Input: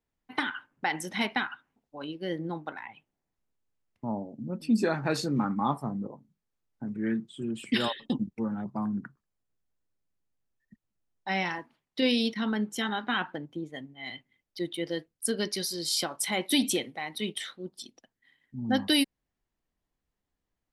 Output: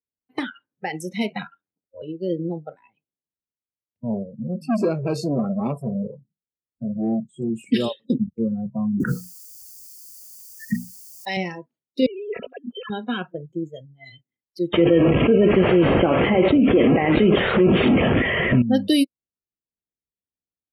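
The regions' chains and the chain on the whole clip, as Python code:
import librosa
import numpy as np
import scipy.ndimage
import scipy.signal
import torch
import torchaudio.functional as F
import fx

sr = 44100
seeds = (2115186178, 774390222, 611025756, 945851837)

y = fx.chain(x, sr, fx.comb(ms=5.0, depth=0.47),
    fx.ring_mod(carrier_hz=44.0), at=(1.29, 2.02))
y = fx.chain(y, sr, fx.low_shelf(hz=360.0, db=3.0),
    fx.transformer_sat(knee_hz=1100.0), at=(4.14, 7.5))
y = fx.chain(y, sr, fx.tilt_eq(slope=3.5),
    fx.hum_notches(base_hz=60, count=9),
    fx.env_flatten(amount_pct=100), at=(9.0, 11.37))
y = fx.chain(y, sr, fx.sine_speech(),
    fx.over_compress(threshold_db=-38.0, ratio=-1.0), at=(12.06, 12.9))
y = fx.chain(y, sr, fx.delta_mod(bps=16000, step_db=-36.5),
    fx.env_flatten(amount_pct=100), at=(14.73, 18.62))
y = scipy.signal.sosfilt(scipy.signal.butter(2, 61.0, 'highpass', fs=sr, output='sos'), y)
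y = fx.noise_reduce_blind(y, sr, reduce_db=22)
y = fx.low_shelf_res(y, sr, hz=680.0, db=7.5, q=1.5)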